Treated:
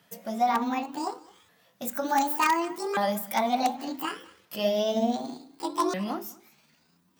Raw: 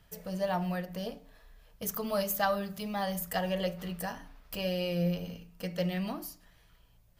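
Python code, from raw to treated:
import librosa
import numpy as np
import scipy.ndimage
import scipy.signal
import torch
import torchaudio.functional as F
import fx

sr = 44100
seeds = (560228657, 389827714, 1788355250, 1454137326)

p1 = fx.pitch_ramps(x, sr, semitones=12.0, every_ms=1484)
p2 = p1 + fx.echo_single(p1, sr, ms=212, db=-20.5, dry=0)
p3 = fx.dynamic_eq(p2, sr, hz=660.0, q=0.71, threshold_db=-42.0, ratio=4.0, max_db=5)
p4 = (np.mod(10.0 ** (18.5 / 20.0) * p3 + 1.0, 2.0) - 1.0) / 10.0 ** (18.5 / 20.0)
p5 = p3 + F.gain(torch.from_numpy(p4), -4.5).numpy()
p6 = scipy.signal.sosfilt(scipy.signal.butter(4, 160.0, 'highpass', fs=sr, output='sos'), p5)
y = fx.end_taper(p6, sr, db_per_s=450.0)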